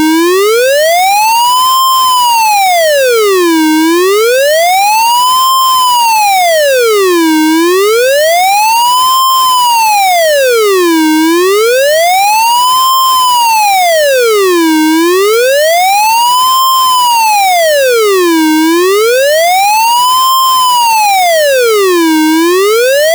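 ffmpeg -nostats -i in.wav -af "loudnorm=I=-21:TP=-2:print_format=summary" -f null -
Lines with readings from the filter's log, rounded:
Input Integrated:     -6.9 LUFS
Input True Peak:      -5.1 dBTP
Input LRA:             0.2 LU
Input Threshold:     -16.9 LUFS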